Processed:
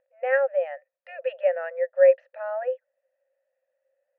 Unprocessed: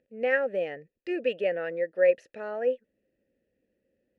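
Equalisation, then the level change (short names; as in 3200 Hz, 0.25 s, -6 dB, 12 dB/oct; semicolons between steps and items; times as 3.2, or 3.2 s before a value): brick-wall FIR high-pass 510 Hz; LPF 1400 Hz 12 dB/oct; air absorption 83 m; +6.5 dB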